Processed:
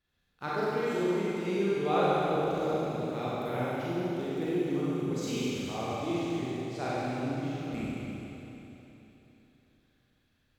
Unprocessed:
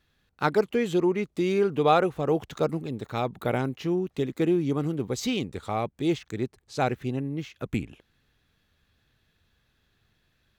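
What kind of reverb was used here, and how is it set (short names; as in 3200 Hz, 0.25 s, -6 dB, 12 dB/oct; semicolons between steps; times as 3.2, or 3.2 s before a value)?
Schroeder reverb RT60 3.4 s, combs from 32 ms, DRR -9.5 dB; gain -13.5 dB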